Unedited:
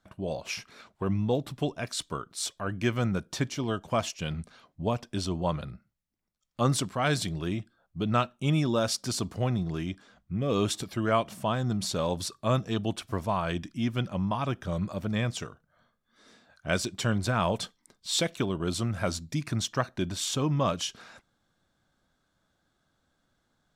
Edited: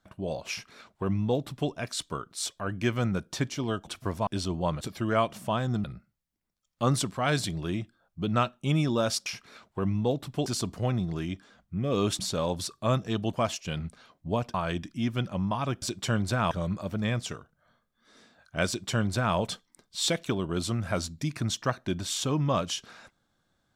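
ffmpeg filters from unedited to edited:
-filter_complex "[0:a]asplit=12[a][b][c][d][e][f][g][h][i][j][k][l];[a]atrim=end=3.872[m];[b]atrim=start=12.938:end=13.342[n];[c]atrim=start=5.078:end=5.622[o];[d]atrim=start=10.768:end=11.802[p];[e]atrim=start=5.618:end=9.042[q];[f]atrim=start=0.498:end=1.702[r];[g]atrim=start=9.038:end=10.772[s];[h]atrim=start=11.798:end=12.942[t];[i]atrim=start=3.868:end=5.082[u];[j]atrim=start=13.338:end=14.622[v];[k]atrim=start=16.778:end=17.472[w];[l]atrim=start=14.618[x];[m][n]acrossfade=d=0.004:c1=hsin:c2=hsin[y];[y][o]acrossfade=d=0.004:c1=hsin:c2=hsin[z];[z][p]acrossfade=d=0.004:c1=hsin:c2=hsin[aa];[aa][q]acrossfade=d=0.004:c1=hsin:c2=hsin[ab];[ab][r]acrossfade=d=0.004:c1=hsin:c2=hsin[ac];[ac][s]acrossfade=d=0.004:c1=hsin:c2=hsin[ad];[ad][t]acrossfade=d=0.004:c1=hsin:c2=hsin[ae];[ae][u]acrossfade=d=0.004:c1=hsin:c2=hsin[af];[af][v]acrossfade=d=0.004:c1=hsin:c2=hsin[ag];[ag][w]acrossfade=d=0.004:c1=hsin:c2=hsin[ah];[ah][x]acrossfade=d=0.004:c1=hsin:c2=hsin"

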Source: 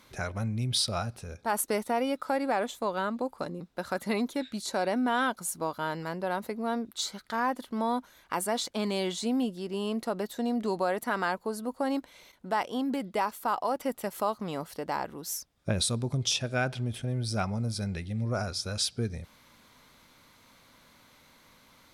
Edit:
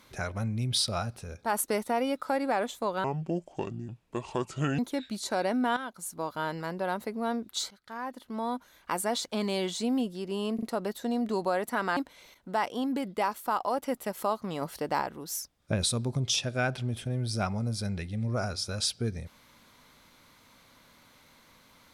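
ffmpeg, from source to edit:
-filter_complex "[0:a]asplit=10[a][b][c][d][e][f][g][h][i][j];[a]atrim=end=3.044[k];[b]atrim=start=3.04:end=4.21,asetpts=PTS-STARTPTS,asetrate=29547,aresample=44100,atrim=end_sample=77010,asetpts=PTS-STARTPTS[l];[c]atrim=start=4.206:end=5.19,asetpts=PTS-STARTPTS,afade=t=out:st=0.98:d=0.004:c=hsin:silence=0.237137[m];[d]atrim=start=5.19:end=7.13,asetpts=PTS-STARTPTS,afade=t=in:d=0.65:silence=0.237137,afade=t=out:st=1.936:d=0.004:c=hsin:silence=0.158489[n];[e]atrim=start=7.13:end=10.012,asetpts=PTS-STARTPTS,afade=t=in:d=1.22:silence=0.158489[o];[f]atrim=start=9.968:end=10.012[p];[g]atrim=start=9.968:end=11.312[q];[h]atrim=start=11.938:end=14.592[r];[i]atrim=start=14.588:end=14.992,asetpts=PTS-STARTPTS,volume=3dB[s];[j]atrim=start=14.988[t];[k][l]acrossfade=d=0.004:c1=hsin:c2=hsin[u];[m][n][o]concat=n=3:v=0:a=1[v];[u][v]acrossfade=d=0.004:c1=hsin:c2=hsin[w];[w][p]acrossfade=d=0.004:c1=hsin:c2=hsin[x];[x][q]acrossfade=d=0.004:c1=hsin:c2=hsin[y];[y][r]acrossfade=d=0.004:c1=hsin:c2=hsin[z];[z][s]acrossfade=d=0.004:c1=hsin:c2=hsin[aa];[aa][t]acrossfade=d=0.004:c1=hsin:c2=hsin"

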